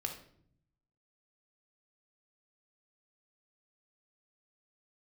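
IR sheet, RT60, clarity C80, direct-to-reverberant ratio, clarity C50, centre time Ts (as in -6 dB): 0.60 s, 12.0 dB, 3.0 dB, 7.5 dB, 19 ms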